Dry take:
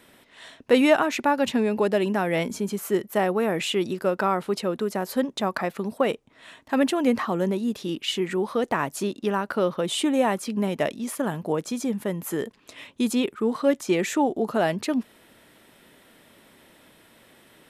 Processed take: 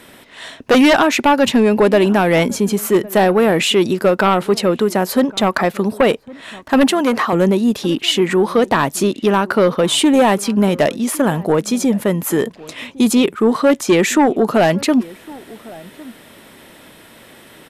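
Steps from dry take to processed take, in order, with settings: sine folder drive 8 dB, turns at -6.5 dBFS; 6.88–7.33 s: high-pass 390 Hz 6 dB/octave; echo from a far wall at 190 m, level -21 dB

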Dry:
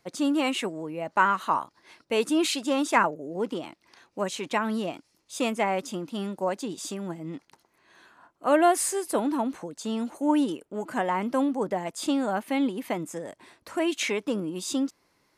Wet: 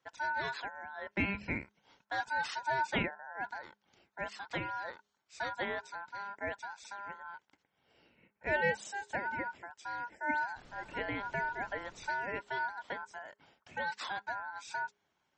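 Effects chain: ring modulator 1.2 kHz; high-pass 53 Hz 12 dB/octave; 2.45–2.90 s: dynamic bell 920 Hz, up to +7 dB, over -44 dBFS, Q 3; steep low-pass 8.1 kHz 36 dB/octave; 10.55–12.08 s: added noise pink -48 dBFS; treble shelf 3 kHz -6.5 dB; de-hum 206 Hz, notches 2; trim -6.5 dB; MP3 32 kbps 48 kHz

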